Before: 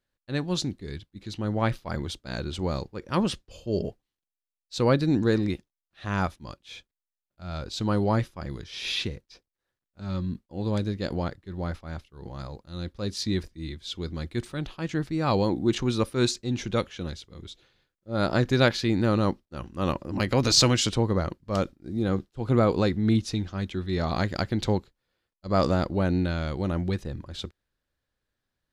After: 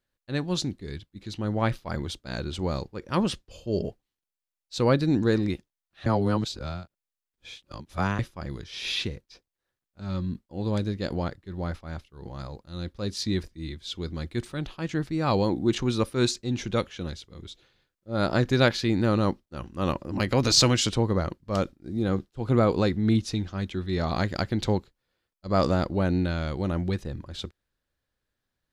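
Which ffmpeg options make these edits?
-filter_complex "[0:a]asplit=3[a][b][c];[a]atrim=end=6.062[d];[b]atrim=start=6.058:end=8.192,asetpts=PTS-STARTPTS,areverse[e];[c]atrim=start=8.188[f];[d][e]acrossfade=d=0.004:c1=hsin:c2=hsin[g];[g][f]acrossfade=d=0.004:c1=hsin:c2=hsin"

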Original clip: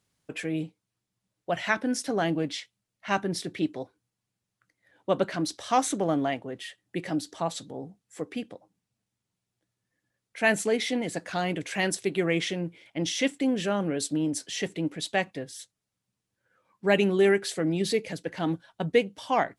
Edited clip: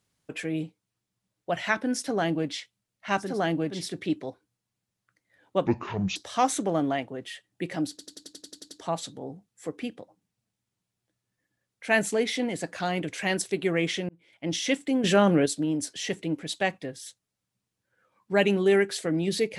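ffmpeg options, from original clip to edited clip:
-filter_complex "[0:a]asplit=17[a][b][c][d][e][f][g][h][i][j][k][l][m][n][o][p][q];[a]atrim=end=3.41[r];[b]atrim=start=1.95:end=2.66[s];[c]atrim=start=3.17:end=5.194[t];[d]atrim=start=5.19:end=5.5,asetpts=PTS-STARTPTS,asetrate=27342,aresample=44100[u];[e]atrim=start=5.496:end=7.332[v];[f]atrim=start=7.238:end=7.332[w];[g]atrim=start=7.238:end=7.332[x];[h]atrim=start=7.238:end=7.332[y];[i]atrim=start=7.238:end=7.332[z];[j]atrim=start=7.238:end=7.332[aa];[k]atrim=start=7.238:end=7.332[ab];[l]atrim=start=7.238:end=7.332[ac];[m]atrim=start=7.238:end=7.332[ad];[n]atrim=start=7.238:end=12.62,asetpts=PTS-STARTPTS,afade=t=out:st=5.378:d=0.004:c=hsin[ae];[o]atrim=start=12.62:end=13.572,asetpts=PTS-STARTPTS,afade=t=in:d=0.43[af];[p]atrim=start=13.568:end=13.992,asetpts=PTS-STARTPTS,volume=7.5dB[ag];[q]atrim=start=13.988[ah];[r][s]acrossfade=d=0.24:c1=tri:c2=tri[ai];[ai][t]acrossfade=d=0.24:c1=tri:c2=tri[aj];[aj][u]acrossfade=d=0.004:c1=hsin:c2=hsin[ak];[ak][v]acrossfade=d=0.004:c1=hsin:c2=hsin[al];[al][w]acrossfade=d=0.004:c1=hsin:c2=hsin[am];[am][x]acrossfade=d=0.004:c1=hsin:c2=hsin[an];[an][y]acrossfade=d=0.004:c1=hsin:c2=hsin[ao];[ao][z]acrossfade=d=0.004:c1=hsin:c2=hsin[ap];[ap][aa]acrossfade=d=0.004:c1=hsin:c2=hsin[aq];[aq][ab]acrossfade=d=0.004:c1=hsin:c2=hsin[ar];[ar][ac]acrossfade=d=0.004:c1=hsin:c2=hsin[as];[as][ad]acrossfade=d=0.004:c1=hsin:c2=hsin[at];[ae][af]concat=n=2:v=0:a=1[au];[at][au]acrossfade=d=0.004:c1=hsin:c2=hsin[av];[av][ag]acrossfade=d=0.004:c1=hsin:c2=hsin[aw];[aw][ah]acrossfade=d=0.004:c1=hsin:c2=hsin"

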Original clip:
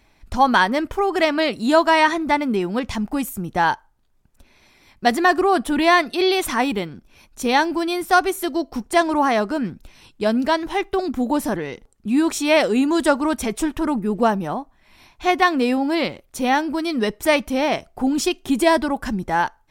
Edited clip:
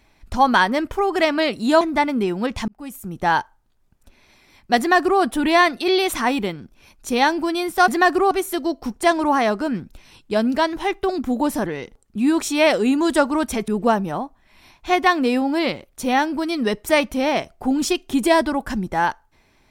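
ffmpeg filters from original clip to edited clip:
-filter_complex "[0:a]asplit=6[a][b][c][d][e][f];[a]atrim=end=1.812[g];[b]atrim=start=2.138:end=3.01,asetpts=PTS-STARTPTS,afade=t=out:st=0.868:d=0.004:c=hsin[h];[c]atrim=start=3.01:end=8.212,asetpts=PTS-STARTPTS,afade=t=in:d=0.61[i];[d]atrim=start=5.108:end=5.542[j];[e]atrim=start=8.208:end=13.582[k];[f]atrim=start=14.038[l];[h][i]concat=n=2:v=0:a=1[m];[g][m]acrossfade=d=0.004:c1=hsin:c2=hsin[n];[n][j]acrossfade=d=0.004:c1=hsin:c2=hsin[o];[o][k]acrossfade=d=0.004:c1=hsin:c2=hsin[p];[p][l]acrossfade=d=0.004:c1=hsin:c2=hsin"

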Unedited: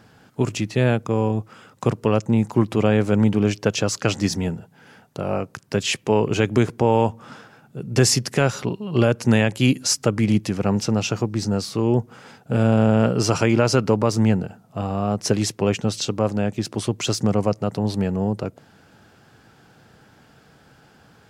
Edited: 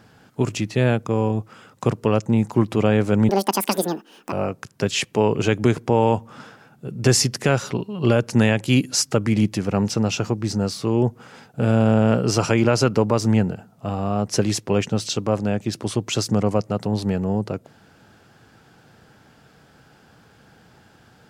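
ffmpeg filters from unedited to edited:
-filter_complex "[0:a]asplit=3[a][b][c];[a]atrim=end=3.294[d];[b]atrim=start=3.29:end=5.24,asetpts=PTS-STARTPTS,asetrate=83349,aresample=44100[e];[c]atrim=start=5.236[f];[d][e]acrossfade=d=0.004:c1=hsin:c2=hsin[g];[g][f]acrossfade=d=0.004:c1=hsin:c2=hsin"

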